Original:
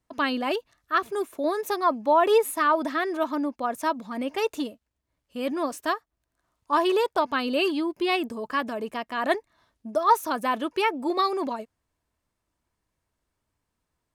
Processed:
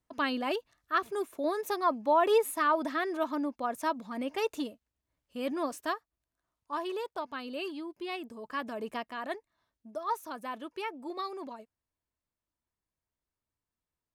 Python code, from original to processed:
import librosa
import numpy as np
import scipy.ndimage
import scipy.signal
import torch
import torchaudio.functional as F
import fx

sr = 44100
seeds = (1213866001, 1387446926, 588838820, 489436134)

y = fx.gain(x, sr, db=fx.line((5.69, -5.0), (6.85, -13.0), (8.21, -13.0), (8.96, -4.0), (9.3, -13.0)))